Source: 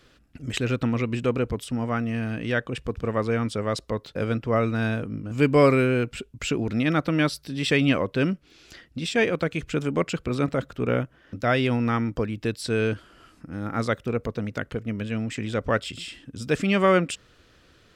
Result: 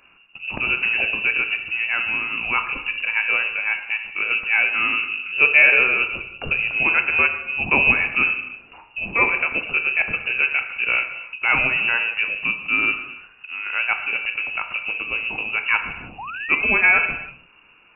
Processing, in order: non-linear reverb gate 0.36 s falling, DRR 5.5 dB; painted sound fall, 16.18–16.93, 280–2100 Hz -35 dBFS; inverted band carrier 2800 Hz; gain +2.5 dB

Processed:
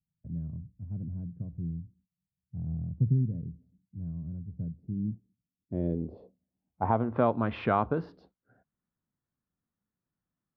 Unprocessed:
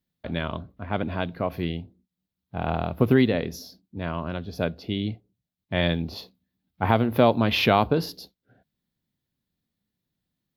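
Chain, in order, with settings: dynamic EQ 1000 Hz, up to -4 dB, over -31 dBFS, Q 0.9; low-pass sweep 140 Hz -> 1300 Hz, 4.75–7.24; gain -7 dB

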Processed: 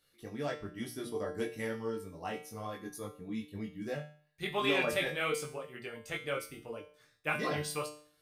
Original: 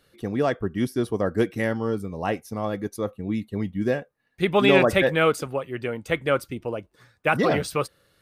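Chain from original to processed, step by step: high shelf 2800 Hz +9.5 dB; notches 60/120/180/240/300/360/420/480/540/600 Hz; chorus voices 4, 1.1 Hz, delay 20 ms, depth 3 ms; resonator 150 Hz, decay 0.47 s, harmonics all, mix 80%

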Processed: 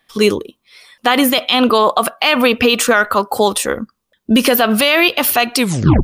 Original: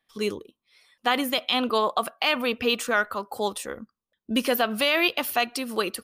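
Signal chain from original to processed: tape stop at the end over 0.45 s; maximiser +17 dB; gain -1 dB

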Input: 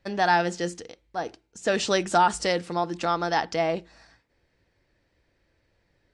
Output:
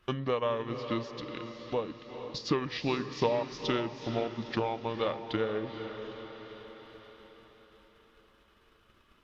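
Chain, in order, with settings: compressor 2:1, threshold -38 dBFS, peak gain reduction 12.5 dB; transient shaper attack +6 dB, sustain -6 dB; wide varispeed 0.664×; on a send: diffused feedback echo 0.465 s, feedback 49%, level -9 dB; on the sum: mismatched tape noise reduction encoder only

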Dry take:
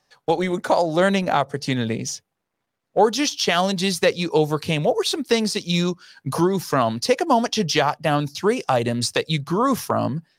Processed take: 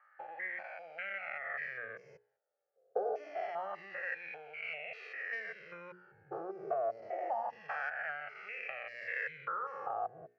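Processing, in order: stepped spectrum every 0.2 s; LPF 4400 Hz 12 dB/oct; low shelf 210 Hz -8.5 dB; notches 60/120/180/240/300/360/420/480 Hz; compressor, threshold -29 dBFS, peak gain reduction 10.5 dB; wah 0.26 Hz 580–2400 Hz, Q 5.1; fixed phaser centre 990 Hz, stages 6; low-pass opened by the level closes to 2700 Hz, open at -32 dBFS; cascading flanger falling 0.28 Hz; gain +14 dB

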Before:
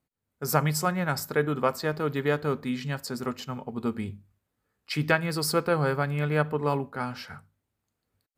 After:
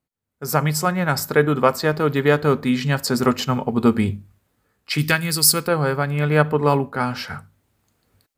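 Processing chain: 4.98–5.68 EQ curve 180 Hz 0 dB, 650 Hz -8 dB, 10000 Hz +13 dB; AGC gain up to 16 dB; gain -1 dB

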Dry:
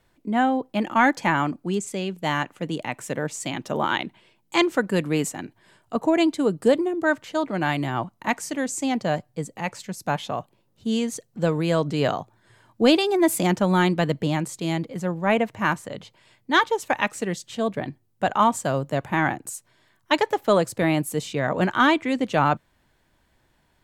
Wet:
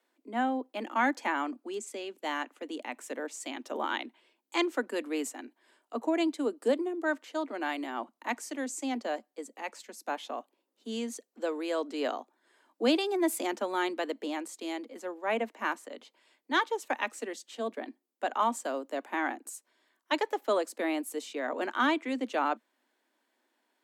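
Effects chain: steep high-pass 230 Hz 96 dB/oct; gain -8.5 dB

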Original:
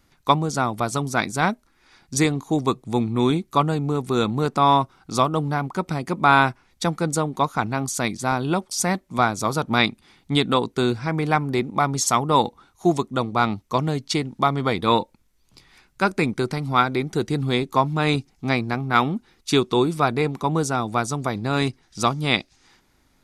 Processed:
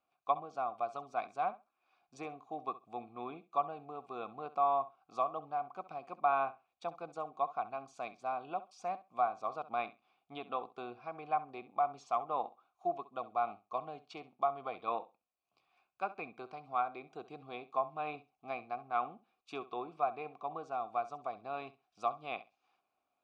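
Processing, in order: treble ducked by the level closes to 2500 Hz, closed at -14.5 dBFS; vowel filter a; flutter echo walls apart 11.3 m, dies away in 0.24 s; gain -6 dB

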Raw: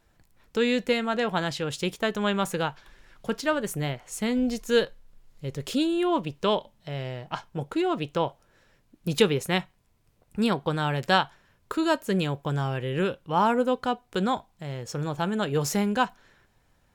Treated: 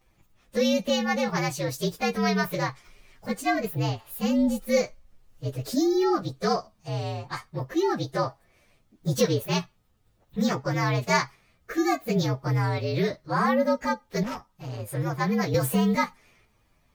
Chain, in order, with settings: inharmonic rescaling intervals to 116%; in parallel at -1.5 dB: limiter -20.5 dBFS, peak gain reduction 11.5 dB; 14.23–14.8 on the sum: tube stage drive 28 dB, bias 0.45; 15.54–15.95 three-band squash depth 70%; gain -1.5 dB

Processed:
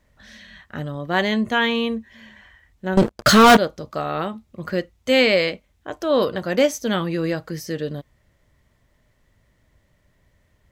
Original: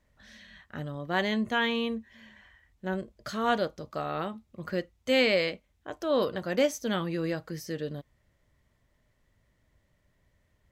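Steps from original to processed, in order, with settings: 2.97–3.57 sample leveller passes 5; gain +7.5 dB

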